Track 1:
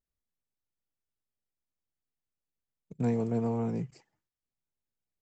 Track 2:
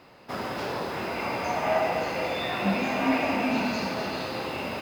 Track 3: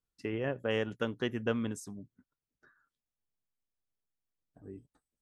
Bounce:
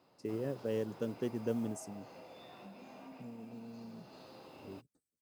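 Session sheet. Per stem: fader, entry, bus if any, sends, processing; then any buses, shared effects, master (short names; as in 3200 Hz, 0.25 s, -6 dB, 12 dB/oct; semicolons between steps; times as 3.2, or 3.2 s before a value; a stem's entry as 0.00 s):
-17.5 dB, 0.20 s, bus A, no send, bell 210 Hz +12 dB 0.32 oct
-14.0 dB, 0.00 s, bus A, no send, compressor 2.5:1, threshold -38 dBFS, peak gain reduction 12.5 dB
-2.0 dB, 0.00 s, no bus, no send, band shelf 1600 Hz -14 dB 2.6 oct
bus A: 0.0 dB, bell 2000 Hz -9 dB 1.1 oct; compressor 2.5:1, threshold -48 dBFS, peak gain reduction 7.5 dB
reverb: off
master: HPF 100 Hz; modulation noise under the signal 30 dB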